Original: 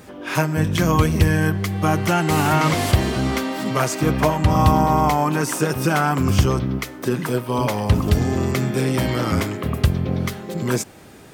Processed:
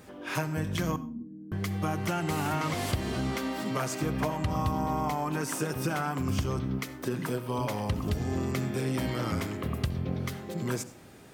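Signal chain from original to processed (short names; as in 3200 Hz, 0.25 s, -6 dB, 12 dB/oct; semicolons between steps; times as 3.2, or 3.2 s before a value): 0.96–1.52 Butterworth band-pass 250 Hz, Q 4.8; compressor 3:1, threshold -19 dBFS, peak gain reduction 8 dB; reverb, pre-delay 66 ms, DRR 15.5 dB; gain -8 dB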